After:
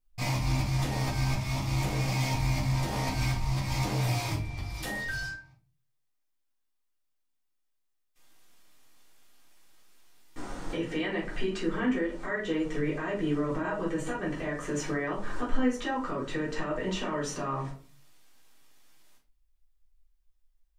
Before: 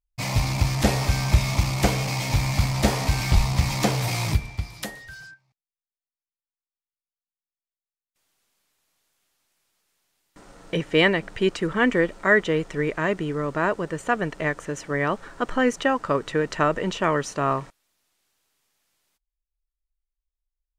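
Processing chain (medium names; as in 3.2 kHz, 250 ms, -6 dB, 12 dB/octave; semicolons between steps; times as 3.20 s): 13.48–14.14 s: comb 6.2 ms; compression 6:1, threshold -34 dBFS, peak gain reduction 21 dB; peak limiter -30.5 dBFS, peak gain reduction 10.5 dB; reverberation RT60 0.40 s, pre-delay 3 ms, DRR -6.5 dB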